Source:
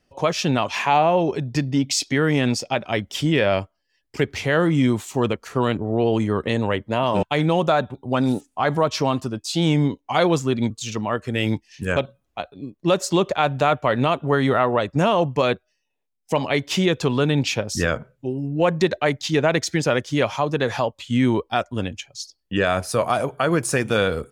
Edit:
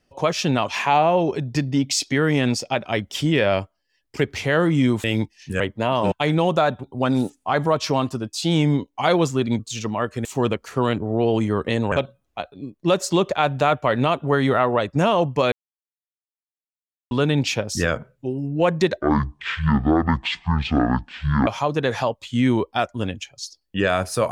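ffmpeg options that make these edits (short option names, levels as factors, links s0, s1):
-filter_complex "[0:a]asplit=9[s0][s1][s2][s3][s4][s5][s6][s7][s8];[s0]atrim=end=5.042[s9];[s1]atrim=start=11.358:end=11.922[s10];[s2]atrim=start=6.708:end=11.362[s11];[s3]atrim=start=5.038:end=6.712[s12];[s4]atrim=start=11.918:end=15.52,asetpts=PTS-STARTPTS,afade=t=out:st=3.598:d=0.004:c=hsin[s13];[s5]atrim=start=15.52:end=17.11,asetpts=PTS-STARTPTS,volume=0[s14];[s6]atrim=start=17.11:end=19.014,asetpts=PTS-STARTPTS,afade=t=in:d=0.004:c=hsin[s15];[s7]atrim=start=19.01:end=20.24,asetpts=PTS-STARTPTS,asetrate=22050,aresample=44100[s16];[s8]atrim=start=20.236[s17];[s9][s10]acrossfade=d=0.004:c1=hsin:c2=hsin[s18];[s18][s11]acrossfade=d=0.004:c1=hsin:c2=hsin[s19];[s19][s12]acrossfade=d=0.004:c1=hsin:c2=hsin[s20];[s13][s14][s15]concat=n=3:v=0:a=1[s21];[s20][s21]acrossfade=d=0.004:c1=hsin:c2=hsin[s22];[s22][s16]acrossfade=d=0.004:c1=hsin:c2=hsin[s23];[s23][s17]acrossfade=d=0.004:c1=hsin:c2=hsin"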